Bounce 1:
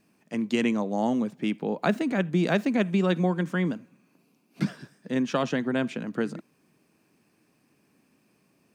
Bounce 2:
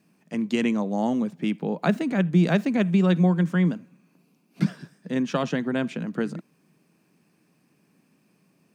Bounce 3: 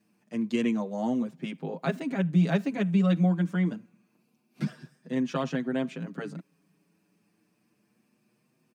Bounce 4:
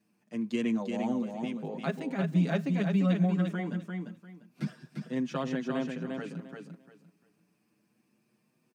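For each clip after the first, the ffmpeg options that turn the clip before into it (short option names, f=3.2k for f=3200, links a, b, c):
-af "highpass=100,equalizer=f=170:t=o:w=0.47:g=8"
-filter_complex "[0:a]asplit=2[a][b];[b]adelay=6.4,afreqshift=0.26[c];[a][c]amix=inputs=2:normalize=1,volume=-2.5dB"
-af "aecho=1:1:347|694|1041:0.562|0.124|0.0272,volume=-3.5dB"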